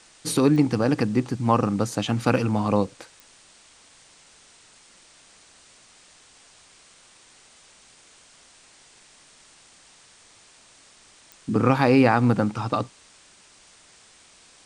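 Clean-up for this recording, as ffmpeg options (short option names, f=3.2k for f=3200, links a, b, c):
-af "adeclick=t=4,afwtdn=0.0032"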